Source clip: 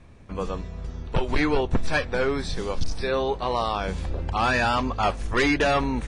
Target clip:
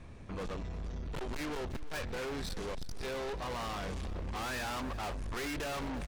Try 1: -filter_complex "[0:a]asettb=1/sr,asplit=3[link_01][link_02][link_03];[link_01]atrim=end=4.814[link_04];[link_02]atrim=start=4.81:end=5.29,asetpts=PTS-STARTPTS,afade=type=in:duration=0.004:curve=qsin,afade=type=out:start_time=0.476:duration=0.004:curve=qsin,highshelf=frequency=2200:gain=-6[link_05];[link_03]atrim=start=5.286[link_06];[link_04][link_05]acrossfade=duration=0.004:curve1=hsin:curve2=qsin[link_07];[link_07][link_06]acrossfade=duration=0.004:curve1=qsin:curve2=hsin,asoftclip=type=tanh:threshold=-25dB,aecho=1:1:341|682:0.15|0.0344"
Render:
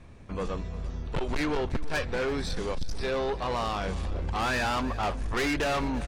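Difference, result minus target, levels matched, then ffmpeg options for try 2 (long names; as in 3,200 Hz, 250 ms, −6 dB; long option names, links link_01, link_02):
soft clipping: distortion −6 dB
-filter_complex "[0:a]asettb=1/sr,asplit=3[link_01][link_02][link_03];[link_01]atrim=end=4.814[link_04];[link_02]atrim=start=4.81:end=5.29,asetpts=PTS-STARTPTS,afade=type=in:duration=0.004:curve=qsin,afade=type=out:start_time=0.476:duration=0.004:curve=qsin,highshelf=frequency=2200:gain=-6[link_05];[link_03]atrim=start=5.286[link_06];[link_04][link_05]acrossfade=duration=0.004:curve1=hsin:curve2=qsin[link_07];[link_07][link_06]acrossfade=duration=0.004:curve1=qsin:curve2=hsin,asoftclip=type=tanh:threshold=-36.5dB,aecho=1:1:341|682:0.15|0.0344"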